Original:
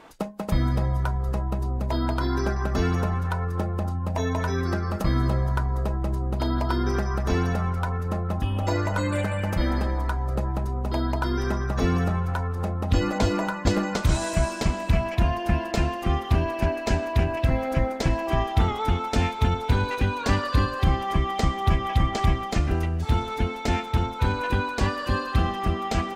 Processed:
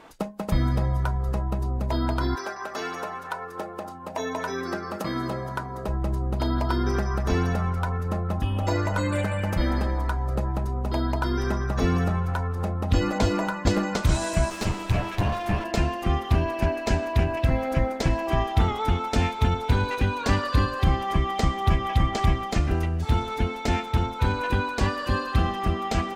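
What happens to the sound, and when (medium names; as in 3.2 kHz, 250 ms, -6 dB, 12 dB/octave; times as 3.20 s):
2.34–5.87 s: high-pass 650 Hz -> 170 Hz
14.50–15.64 s: comb filter that takes the minimum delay 9.8 ms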